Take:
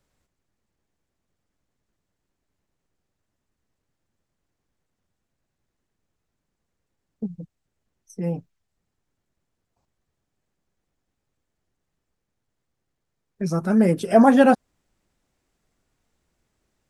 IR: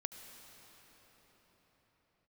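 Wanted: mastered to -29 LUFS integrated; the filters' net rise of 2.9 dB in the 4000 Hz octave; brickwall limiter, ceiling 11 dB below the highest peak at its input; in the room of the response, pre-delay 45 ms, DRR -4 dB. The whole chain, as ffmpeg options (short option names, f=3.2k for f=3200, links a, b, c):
-filter_complex "[0:a]equalizer=f=4k:t=o:g=4,alimiter=limit=-15dB:level=0:latency=1,asplit=2[a][b];[1:a]atrim=start_sample=2205,adelay=45[c];[b][c]afir=irnorm=-1:irlink=0,volume=6dB[d];[a][d]amix=inputs=2:normalize=0,volume=-7dB"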